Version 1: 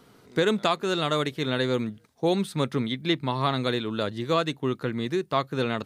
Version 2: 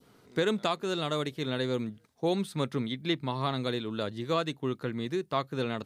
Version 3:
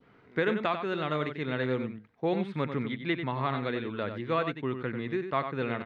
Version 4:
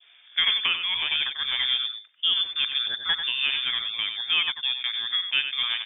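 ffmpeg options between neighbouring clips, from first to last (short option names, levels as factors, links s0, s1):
-af "adynamicequalizer=threshold=0.0126:dfrequency=1600:dqfactor=0.77:tfrequency=1600:tqfactor=0.77:attack=5:release=100:ratio=0.375:range=2:mode=cutabove:tftype=bell,volume=0.596"
-filter_complex "[0:a]lowpass=f=2100:t=q:w=1.9,asplit=2[s0][s1];[s1]adelay=93.29,volume=0.398,highshelf=f=4000:g=-2.1[s2];[s0][s2]amix=inputs=2:normalize=0,volume=0.891"
-af "lowpass=f=3100:t=q:w=0.5098,lowpass=f=3100:t=q:w=0.6013,lowpass=f=3100:t=q:w=0.9,lowpass=f=3100:t=q:w=2.563,afreqshift=-3700,volume=1.68"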